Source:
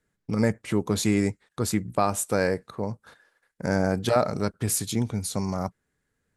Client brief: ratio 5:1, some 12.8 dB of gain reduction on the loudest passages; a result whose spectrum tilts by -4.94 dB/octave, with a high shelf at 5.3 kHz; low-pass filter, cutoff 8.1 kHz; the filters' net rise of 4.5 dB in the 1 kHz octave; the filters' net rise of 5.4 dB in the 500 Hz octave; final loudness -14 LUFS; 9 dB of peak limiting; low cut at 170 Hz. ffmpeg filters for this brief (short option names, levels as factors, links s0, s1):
-af "highpass=170,lowpass=8100,equalizer=f=500:t=o:g=5.5,equalizer=f=1000:t=o:g=4.5,highshelf=f=5300:g=-8,acompressor=threshold=0.0447:ratio=5,volume=10.6,alimiter=limit=0.944:level=0:latency=1"